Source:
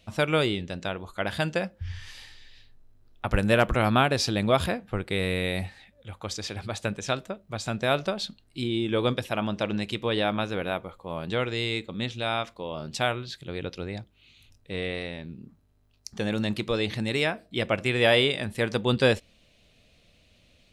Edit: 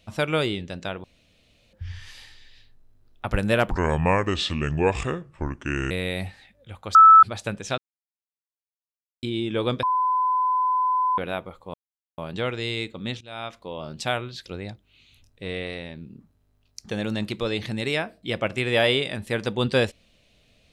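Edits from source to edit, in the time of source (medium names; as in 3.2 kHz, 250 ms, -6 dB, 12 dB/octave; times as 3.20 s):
1.04–1.73 s: room tone
3.70–5.29 s: speed 72%
6.33–6.61 s: bleep 1.31 kHz -7 dBFS
7.16–8.61 s: mute
9.21–10.56 s: bleep 1.01 kHz -19 dBFS
11.12 s: insert silence 0.44 s
12.15–12.62 s: fade in, from -19.5 dB
13.40–13.74 s: delete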